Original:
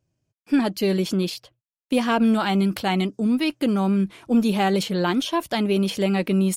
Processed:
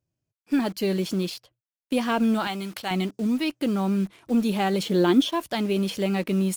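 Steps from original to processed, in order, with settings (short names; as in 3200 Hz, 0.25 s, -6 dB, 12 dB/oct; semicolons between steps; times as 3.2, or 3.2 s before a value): 4.85–5.3 small resonant body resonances 310/3400 Hz, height 11 dB, ringing for 20 ms; in parallel at -3 dB: bit-crush 6-bit; 2.47–2.91 on the sum: low shelf 480 Hz -11.5 dB; gain -8 dB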